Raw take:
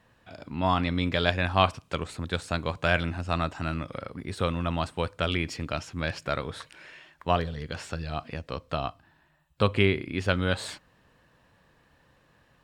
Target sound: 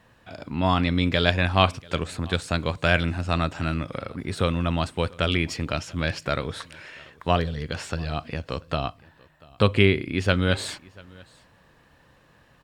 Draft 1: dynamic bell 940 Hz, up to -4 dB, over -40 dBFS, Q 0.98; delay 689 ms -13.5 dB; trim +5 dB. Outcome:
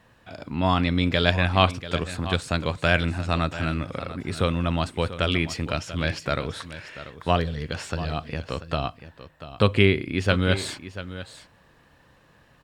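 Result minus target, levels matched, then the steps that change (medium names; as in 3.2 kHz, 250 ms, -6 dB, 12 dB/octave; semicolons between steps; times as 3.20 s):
echo-to-direct +11 dB
change: delay 689 ms -24.5 dB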